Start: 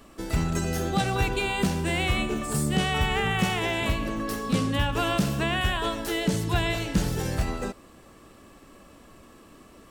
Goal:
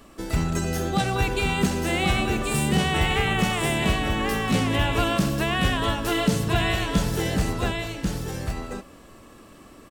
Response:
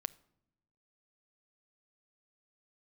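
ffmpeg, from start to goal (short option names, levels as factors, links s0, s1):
-af "aecho=1:1:1090:0.631,volume=1.19"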